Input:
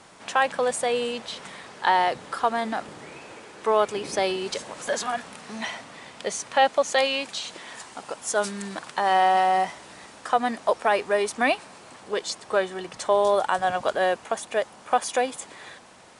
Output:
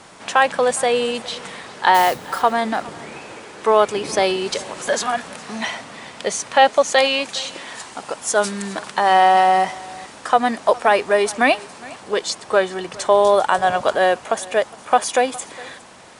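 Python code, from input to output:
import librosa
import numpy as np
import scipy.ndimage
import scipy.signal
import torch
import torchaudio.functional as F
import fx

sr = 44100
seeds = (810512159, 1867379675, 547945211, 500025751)

y = fx.mod_noise(x, sr, seeds[0], snr_db=16, at=(1.94, 2.42))
y = y + 10.0 ** (-21.5 / 20.0) * np.pad(y, (int(411 * sr / 1000.0), 0))[:len(y)]
y = y * 10.0 ** (6.5 / 20.0)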